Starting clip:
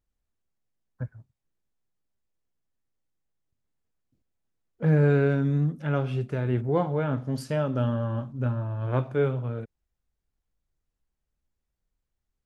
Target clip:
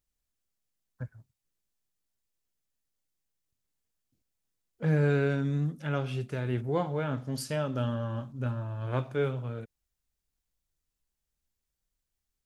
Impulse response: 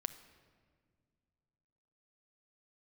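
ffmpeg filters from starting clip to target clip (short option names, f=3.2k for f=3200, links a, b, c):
-af "highshelf=f=2.6k:g=11.5,volume=-5dB"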